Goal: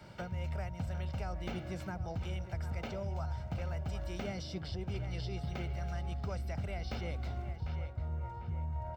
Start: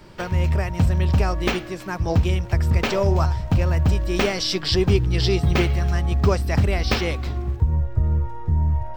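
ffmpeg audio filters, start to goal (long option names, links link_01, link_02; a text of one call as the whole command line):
ffmpeg -i in.wav -filter_complex "[0:a]areverse,acompressor=threshold=-24dB:ratio=6,areverse,highpass=65,highshelf=frequency=6200:gain=-5.5,aecho=1:1:1.4:0.52,asplit=2[link_01][link_02];[link_02]adelay=747,lowpass=frequency=2100:poles=1,volume=-14dB,asplit=2[link_03][link_04];[link_04]adelay=747,lowpass=frequency=2100:poles=1,volume=0.5,asplit=2[link_05][link_06];[link_06]adelay=747,lowpass=frequency=2100:poles=1,volume=0.5,asplit=2[link_07][link_08];[link_08]adelay=747,lowpass=frequency=2100:poles=1,volume=0.5,asplit=2[link_09][link_10];[link_10]adelay=747,lowpass=frequency=2100:poles=1,volume=0.5[link_11];[link_01][link_03][link_05][link_07][link_09][link_11]amix=inputs=6:normalize=0,acrossover=split=360|790[link_12][link_13][link_14];[link_12]acompressor=threshold=-29dB:ratio=4[link_15];[link_13]acompressor=threshold=-40dB:ratio=4[link_16];[link_14]acompressor=threshold=-42dB:ratio=4[link_17];[link_15][link_16][link_17]amix=inputs=3:normalize=0,volume=-6.5dB" out.wav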